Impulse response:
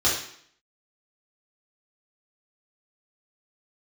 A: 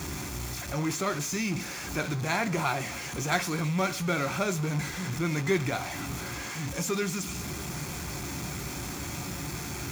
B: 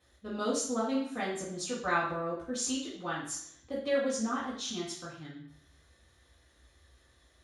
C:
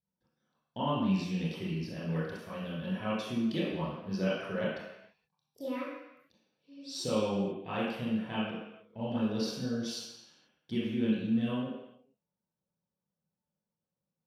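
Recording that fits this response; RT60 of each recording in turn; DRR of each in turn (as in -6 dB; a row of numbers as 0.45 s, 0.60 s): B; 0.40 s, 0.60 s, no single decay rate; 8.5 dB, -7.5 dB, -10.0 dB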